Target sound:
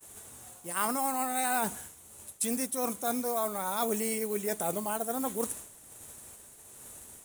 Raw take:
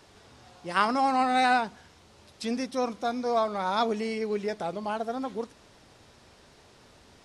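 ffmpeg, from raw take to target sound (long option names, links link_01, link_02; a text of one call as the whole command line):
ffmpeg -i in.wav -filter_complex "[0:a]agate=range=-33dB:threshold=-49dB:ratio=3:detection=peak,asplit=2[link_01][link_02];[link_02]acrusher=bits=4:mode=log:mix=0:aa=0.000001,volume=-11dB[link_03];[link_01][link_03]amix=inputs=2:normalize=0,tremolo=f=1.3:d=0.42,aexciter=amount=11:drive=9.3:freq=7500,areverse,acompressor=threshold=-33dB:ratio=4,areverse,volume=4dB" out.wav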